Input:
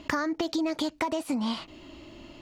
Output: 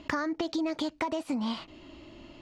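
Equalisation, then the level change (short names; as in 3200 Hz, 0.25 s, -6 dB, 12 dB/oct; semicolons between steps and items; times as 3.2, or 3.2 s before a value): air absorption 51 m; -2.0 dB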